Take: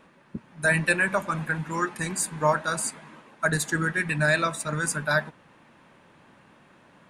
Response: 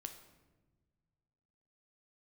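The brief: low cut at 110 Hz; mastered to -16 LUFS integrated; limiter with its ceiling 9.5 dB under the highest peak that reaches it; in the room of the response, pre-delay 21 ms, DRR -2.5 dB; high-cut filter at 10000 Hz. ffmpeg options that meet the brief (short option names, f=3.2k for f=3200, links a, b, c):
-filter_complex "[0:a]highpass=110,lowpass=10k,alimiter=limit=-18.5dB:level=0:latency=1,asplit=2[a][b];[1:a]atrim=start_sample=2205,adelay=21[c];[b][c]afir=irnorm=-1:irlink=0,volume=6.5dB[d];[a][d]amix=inputs=2:normalize=0,volume=9.5dB"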